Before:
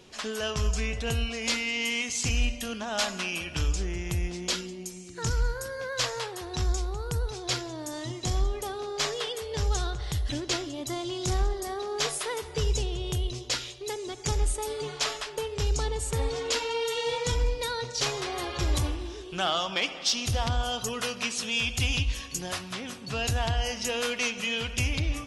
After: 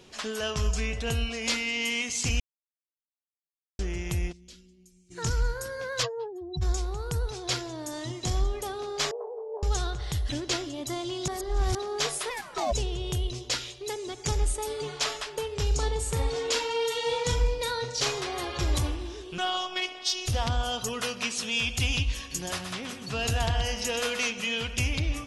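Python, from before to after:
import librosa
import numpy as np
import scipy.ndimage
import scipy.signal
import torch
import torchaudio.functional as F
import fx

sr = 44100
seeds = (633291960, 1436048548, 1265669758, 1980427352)

y = fx.tone_stack(x, sr, knobs='10-0-1', at=(4.31, 5.1), fade=0.02)
y = fx.spec_expand(y, sr, power=2.9, at=(6.02, 6.61), fade=0.02)
y = fx.ellip_bandpass(y, sr, low_hz=410.0, high_hz=950.0, order=3, stop_db=60, at=(9.11, 9.63))
y = fx.ring_mod(y, sr, carrier_hz=fx.line((12.29, 1600.0), (12.71, 620.0)), at=(12.29, 12.71), fade=0.02)
y = fx.doubler(y, sr, ms=39.0, db=-8.5, at=(15.67, 18.19))
y = fx.robotise(y, sr, hz=366.0, at=(19.38, 20.28))
y = fx.echo_single(y, sr, ms=126, db=-8.0, at=(22.3, 24.31), fade=0.02)
y = fx.edit(y, sr, fx.silence(start_s=2.4, length_s=1.39),
    fx.reverse_span(start_s=11.28, length_s=0.47), tone=tone)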